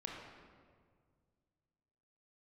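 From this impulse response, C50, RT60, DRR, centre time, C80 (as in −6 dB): 0.5 dB, 1.9 s, −1.5 dB, 81 ms, 2.5 dB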